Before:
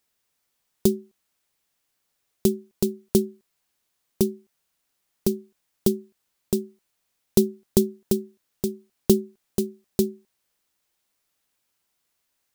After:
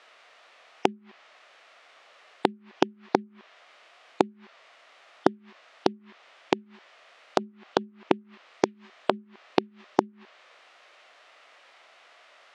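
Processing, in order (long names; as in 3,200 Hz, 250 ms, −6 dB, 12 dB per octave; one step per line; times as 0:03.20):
wave folding −8 dBFS
gate with flip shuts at −26 dBFS, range −29 dB
treble cut that deepens with the level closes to 860 Hz, closed at −36.5 dBFS
flat-topped band-pass 1,600 Hz, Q 0.51
formants moved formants −5 semitones
boost into a limiter +29 dB
level −1 dB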